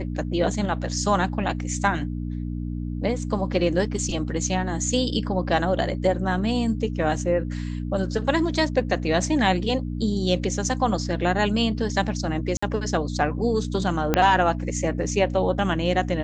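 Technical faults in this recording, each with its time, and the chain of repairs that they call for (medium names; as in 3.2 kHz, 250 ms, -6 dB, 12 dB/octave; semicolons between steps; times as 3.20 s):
hum 60 Hz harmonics 5 -29 dBFS
12.57–12.62 s: dropout 55 ms
14.14 s: pop -5 dBFS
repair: de-click; de-hum 60 Hz, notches 5; interpolate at 12.57 s, 55 ms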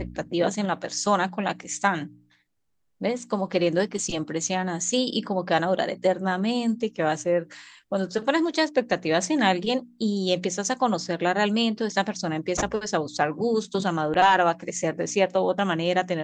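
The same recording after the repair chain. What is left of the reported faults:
14.14 s: pop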